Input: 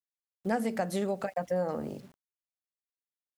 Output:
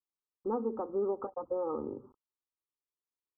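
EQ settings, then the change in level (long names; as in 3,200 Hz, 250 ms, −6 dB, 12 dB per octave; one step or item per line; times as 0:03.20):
Chebyshev low-pass with heavy ripple 1,300 Hz, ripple 3 dB
phaser with its sweep stopped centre 660 Hz, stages 6
+3.5 dB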